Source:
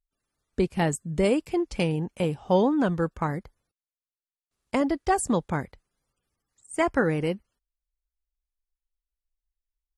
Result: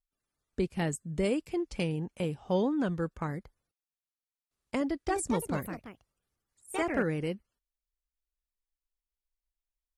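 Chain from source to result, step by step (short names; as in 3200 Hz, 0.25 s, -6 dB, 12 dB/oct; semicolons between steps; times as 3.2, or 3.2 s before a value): dynamic EQ 860 Hz, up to -5 dB, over -38 dBFS, Q 1.3; 4.81–7.12 echoes that change speed 0.273 s, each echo +3 st, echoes 2, each echo -6 dB; gain -5.5 dB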